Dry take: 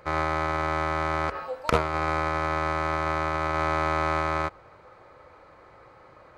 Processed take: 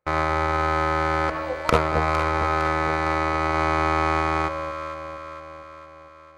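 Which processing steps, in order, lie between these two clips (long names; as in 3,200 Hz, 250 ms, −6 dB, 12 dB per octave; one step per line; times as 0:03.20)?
noise gate −40 dBFS, range −33 dB
on a send: delay that swaps between a low-pass and a high-pass 229 ms, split 850 Hz, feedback 74%, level −7 dB
on the sum: level +3.5 dB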